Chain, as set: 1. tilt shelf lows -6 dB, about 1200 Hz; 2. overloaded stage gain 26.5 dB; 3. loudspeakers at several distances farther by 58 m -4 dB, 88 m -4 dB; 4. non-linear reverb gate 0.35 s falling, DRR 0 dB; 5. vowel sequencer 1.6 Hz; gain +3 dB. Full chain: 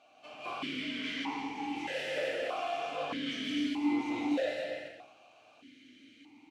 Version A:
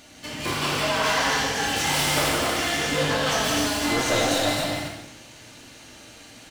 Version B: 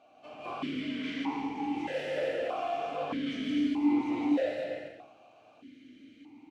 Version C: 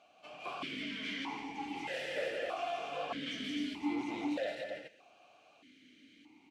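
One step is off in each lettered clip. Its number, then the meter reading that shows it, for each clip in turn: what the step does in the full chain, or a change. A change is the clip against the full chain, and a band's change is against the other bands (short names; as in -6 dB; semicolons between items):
5, 8 kHz band +14.5 dB; 1, 4 kHz band -7.0 dB; 4, momentary loudness spread change -3 LU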